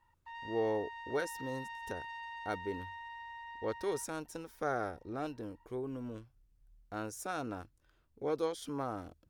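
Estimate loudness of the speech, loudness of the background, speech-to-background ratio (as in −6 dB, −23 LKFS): −39.5 LKFS, −46.0 LKFS, 6.5 dB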